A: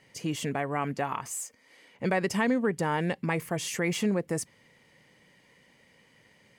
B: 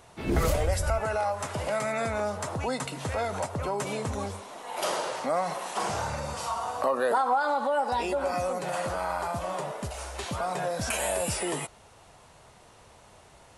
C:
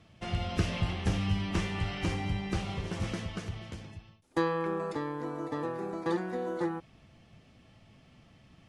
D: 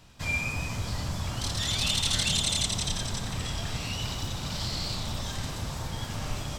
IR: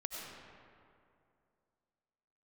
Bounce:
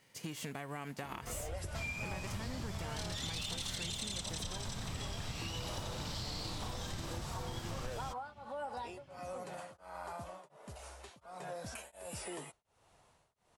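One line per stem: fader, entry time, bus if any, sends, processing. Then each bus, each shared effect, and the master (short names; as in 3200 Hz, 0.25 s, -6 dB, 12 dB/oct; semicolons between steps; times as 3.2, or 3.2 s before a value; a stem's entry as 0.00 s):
-6.5 dB, 0.00 s, no send, spectral whitening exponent 0.6; compressor, threshold -30 dBFS, peak gain reduction 8.5 dB
-12.5 dB, 0.85 s, no send, beating tremolo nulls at 1.4 Hz
-1.0 dB, 1.05 s, no send, compressor, threshold -41 dBFS, peak gain reduction 17.5 dB; tape flanging out of phase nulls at 0.4 Hz, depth 7.5 ms
-4.5 dB, 1.55 s, no send, dry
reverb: off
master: compressor, threshold -37 dBFS, peak gain reduction 10.5 dB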